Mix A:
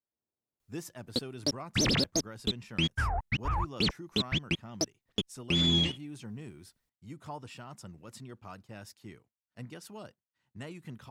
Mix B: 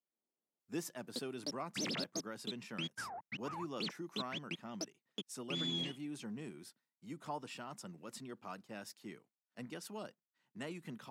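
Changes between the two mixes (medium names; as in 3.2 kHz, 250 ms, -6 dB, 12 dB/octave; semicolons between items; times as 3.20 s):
background -11.5 dB; master: add high-pass 170 Hz 24 dB/octave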